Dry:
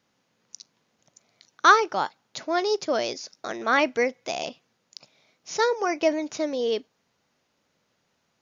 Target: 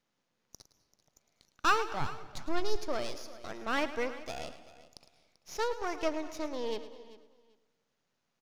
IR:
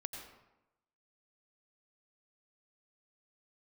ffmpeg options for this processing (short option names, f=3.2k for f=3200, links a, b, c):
-filter_complex "[0:a]aeval=exprs='if(lt(val(0),0),0.251*val(0),val(0))':c=same,asplit=3[a][b][c];[a]afade=t=out:st=2:d=0.02[d];[b]asubboost=boost=8:cutoff=220,afade=t=in:st=2:d=0.02,afade=t=out:st=2.76:d=0.02[e];[c]afade=t=in:st=2.76:d=0.02[f];[d][e][f]amix=inputs=3:normalize=0,aecho=1:1:389|778:0.133|0.0267,asplit=2[g][h];[1:a]atrim=start_sample=2205,adelay=108[i];[h][i]afir=irnorm=-1:irlink=0,volume=-10.5dB[j];[g][j]amix=inputs=2:normalize=0,volume=-7dB"